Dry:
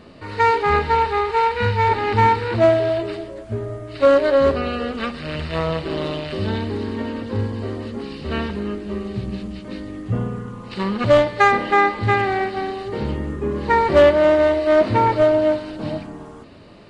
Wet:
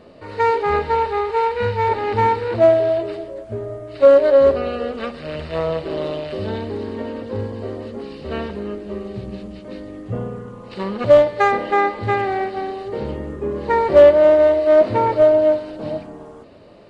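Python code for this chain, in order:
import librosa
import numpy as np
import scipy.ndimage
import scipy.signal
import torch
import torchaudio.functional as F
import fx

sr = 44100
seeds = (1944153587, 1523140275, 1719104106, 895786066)

y = fx.peak_eq(x, sr, hz=550.0, db=9.0, octaves=1.1)
y = y * librosa.db_to_amplitude(-5.0)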